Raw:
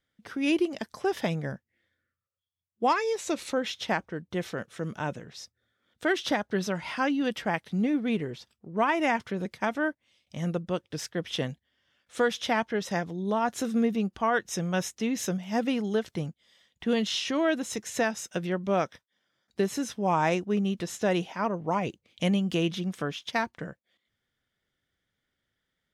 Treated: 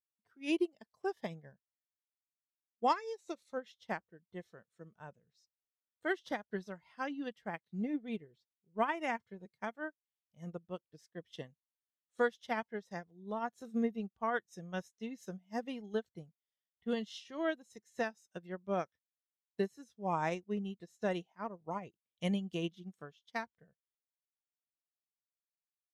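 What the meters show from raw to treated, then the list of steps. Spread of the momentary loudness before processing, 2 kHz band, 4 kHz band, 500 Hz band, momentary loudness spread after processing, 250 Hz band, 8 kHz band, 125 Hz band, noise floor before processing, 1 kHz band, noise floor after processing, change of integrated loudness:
10 LU, -10.5 dB, -15.0 dB, -9.5 dB, 16 LU, -11.0 dB, -21.5 dB, -13.0 dB, -83 dBFS, -9.0 dB, under -85 dBFS, -10.0 dB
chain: spectral noise reduction 9 dB; upward expansion 2.5:1, over -37 dBFS; trim -4.5 dB

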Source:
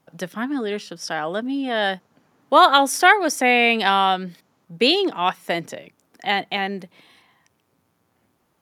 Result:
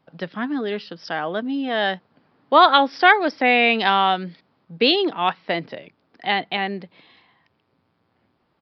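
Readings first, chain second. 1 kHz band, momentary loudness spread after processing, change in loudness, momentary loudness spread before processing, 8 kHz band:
0.0 dB, 16 LU, 0.0 dB, 16 LU, under -25 dB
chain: resampled via 11.025 kHz

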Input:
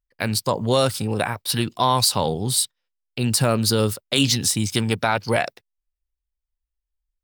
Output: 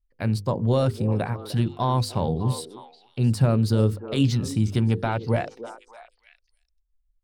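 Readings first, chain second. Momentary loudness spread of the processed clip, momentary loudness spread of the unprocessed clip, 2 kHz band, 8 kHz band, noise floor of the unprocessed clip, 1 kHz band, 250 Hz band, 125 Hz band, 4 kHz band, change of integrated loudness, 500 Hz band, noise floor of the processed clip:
9 LU, 6 LU, -10.0 dB, -17.5 dB, -83 dBFS, -6.5 dB, 0.0 dB, +3.5 dB, -14.0 dB, -3.0 dB, -3.5 dB, -71 dBFS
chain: tilt EQ -3.5 dB/octave; hum notches 50/100/150/200/250/300/350/400/450/500 Hz; repeats whose band climbs or falls 302 ms, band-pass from 400 Hz, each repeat 1.4 oct, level -9 dB; trim -7 dB

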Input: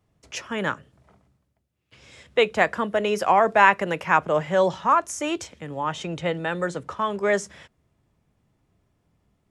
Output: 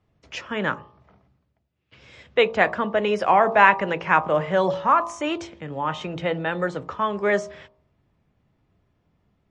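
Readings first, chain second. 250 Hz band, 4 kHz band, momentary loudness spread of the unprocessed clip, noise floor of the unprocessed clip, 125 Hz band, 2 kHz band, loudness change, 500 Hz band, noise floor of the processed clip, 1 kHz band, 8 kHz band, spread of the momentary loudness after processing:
+1.0 dB, 0.0 dB, 13 LU, -72 dBFS, +1.0 dB, +1.5 dB, +1.0 dB, +0.5 dB, -71 dBFS, +1.0 dB, no reading, 13 LU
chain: low-pass 4 kHz 12 dB/octave; de-hum 56.48 Hz, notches 22; trim +2 dB; MP3 40 kbps 24 kHz

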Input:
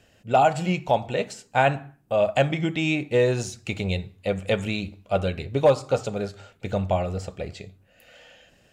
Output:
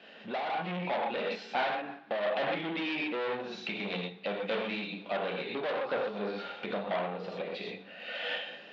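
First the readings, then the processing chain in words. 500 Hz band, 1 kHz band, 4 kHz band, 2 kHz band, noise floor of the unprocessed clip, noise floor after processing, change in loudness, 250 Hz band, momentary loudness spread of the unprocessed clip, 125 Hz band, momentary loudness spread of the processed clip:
-10.0 dB, -9.0 dB, -3.0 dB, -4.5 dB, -60 dBFS, -51 dBFS, -9.5 dB, -9.5 dB, 12 LU, -18.5 dB, 6 LU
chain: gated-style reverb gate 150 ms flat, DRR -0.5 dB; low-pass that closes with the level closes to 2.3 kHz, closed at -15 dBFS; hard clipper -21.5 dBFS, distortion -6 dB; compression 6:1, threshold -40 dBFS, peak gain reduction 15.5 dB; waveshaping leveller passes 2; elliptic band-pass 190–3800 Hz, stop band 40 dB; level rider gain up to 4 dB; bass shelf 380 Hz -8 dB; on a send: thinning echo 60 ms, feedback 76%, level -23 dB; on the sum: random flutter of the level, depth 60%; trim +4.5 dB

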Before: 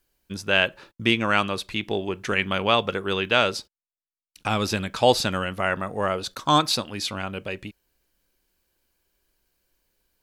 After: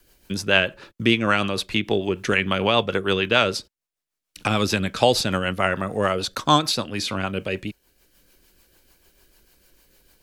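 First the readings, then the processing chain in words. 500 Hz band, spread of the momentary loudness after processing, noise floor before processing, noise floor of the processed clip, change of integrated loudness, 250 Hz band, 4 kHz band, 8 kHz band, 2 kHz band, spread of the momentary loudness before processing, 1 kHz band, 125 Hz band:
+2.5 dB, 9 LU, under -85 dBFS, -85 dBFS, +2.0 dB, +3.5 dB, +2.0 dB, +2.5 dB, +2.0 dB, 13 LU, +0.5 dB, +3.5 dB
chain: rotary cabinet horn 6.7 Hz; three bands compressed up and down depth 40%; trim +5 dB

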